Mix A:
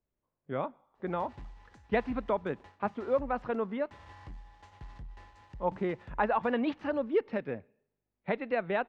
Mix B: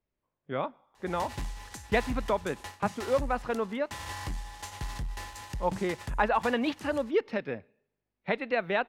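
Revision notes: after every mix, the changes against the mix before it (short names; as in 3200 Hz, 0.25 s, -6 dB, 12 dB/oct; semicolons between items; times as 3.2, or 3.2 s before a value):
background +10.0 dB; master: remove tape spacing loss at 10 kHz 26 dB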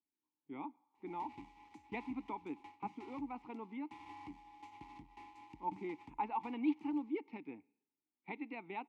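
master: add vowel filter u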